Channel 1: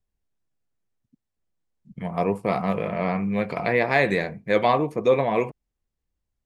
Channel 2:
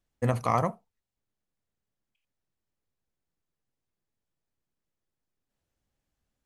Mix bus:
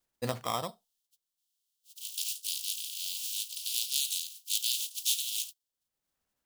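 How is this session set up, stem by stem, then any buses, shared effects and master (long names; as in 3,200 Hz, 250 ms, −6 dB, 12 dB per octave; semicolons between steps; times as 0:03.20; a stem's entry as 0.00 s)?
−7.5 dB, 0.00 s, no send, compressing power law on the bin magnitudes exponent 0.19; Butterworth high-pass 2,900 Hz 72 dB per octave
−1.5 dB, 0.00 s, no send, decimation without filtering 10×; automatic ducking −19 dB, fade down 1.85 s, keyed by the first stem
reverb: not used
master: low-shelf EQ 160 Hz −11.5 dB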